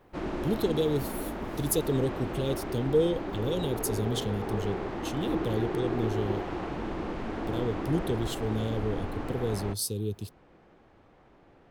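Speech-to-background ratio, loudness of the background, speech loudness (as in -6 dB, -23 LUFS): 2.5 dB, -34.5 LUFS, -32.0 LUFS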